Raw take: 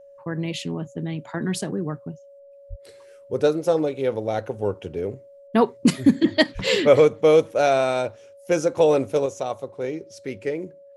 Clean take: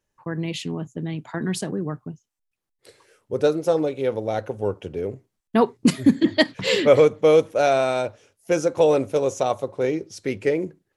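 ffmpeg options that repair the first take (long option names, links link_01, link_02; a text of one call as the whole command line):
ffmpeg -i in.wav -filter_complex "[0:a]bandreject=frequency=560:width=30,asplit=3[link_01][link_02][link_03];[link_01]afade=type=out:start_time=2.69:duration=0.02[link_04];[link_02]highpass=frequency=140:width=0.5412,highpass=frequency=140:width=1.3066,afade=type=in:start_time=2.69:duration=0.02,afade=type=out:start_time=2.81:duration=0.02[link_05];[link_03]afade=type=in:start_time=2.81:duration=0.02[link_06];[link_04][link_05][link_06]amix=inputs=3:normalize=0,asplit=3[link_07][link_08][link_09];[link_07]afade=type=out:start_time=6.54:duration=0.02[link_10];[link_08]highpass=frequency=140:width=0.5412,highpass=frequency=140:width=1.3066,afade=type=in:start_time=6.54:duration=0.02,afade=type=out:start_time=6.66:duration=0.02[link_11];[link_09]afade=type=in:start_time=6.66:duration=0.02[link_12];[link_10][link_11][link_12]amix=inputs=3:normalize=0,asetnsamples=nb_out_samples=441:pad=0,asendcmd='9.26 volume volume 5.5dB',volume=0dB" out.wav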